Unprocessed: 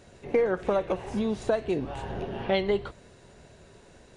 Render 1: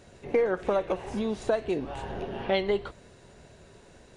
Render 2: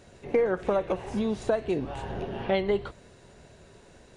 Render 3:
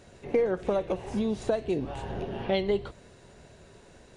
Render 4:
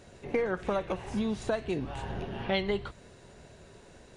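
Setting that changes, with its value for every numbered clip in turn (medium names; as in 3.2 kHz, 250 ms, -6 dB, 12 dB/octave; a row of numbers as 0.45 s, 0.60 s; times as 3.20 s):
dynamic bell, frequency: 110 Hz, 4.8 kHz, 1.4 kHz, 490 Hz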